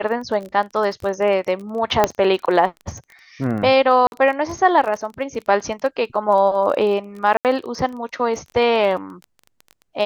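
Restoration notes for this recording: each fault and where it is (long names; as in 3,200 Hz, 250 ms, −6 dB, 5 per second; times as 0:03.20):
surface crackle 21 per second −27 dBFS
0:02.04: click −1 dBFS
0:04.07–0:04.12: drop-out 51 ms
0:07.37–0:07.45: drop-out 78 ms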